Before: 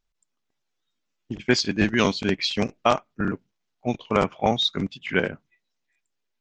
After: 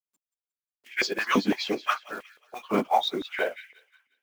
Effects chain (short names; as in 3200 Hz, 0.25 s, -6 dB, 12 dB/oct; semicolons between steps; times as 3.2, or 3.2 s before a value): plain phase-vocoder stretch 0.66×; companded quantiser 6-bit; thin delay 0.179 s, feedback 44%, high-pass 1900 Hz, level -15 dB; stepped high-pass 5.9 Hz 250–2000 Hz; gain -2 dB